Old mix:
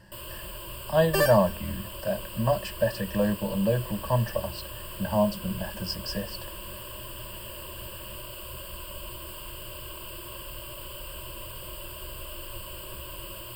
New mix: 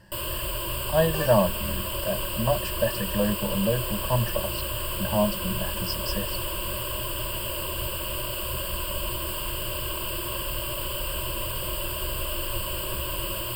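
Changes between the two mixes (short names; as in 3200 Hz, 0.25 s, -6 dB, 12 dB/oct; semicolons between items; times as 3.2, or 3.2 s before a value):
first sound +9.5 dB; second sound -8.5 dB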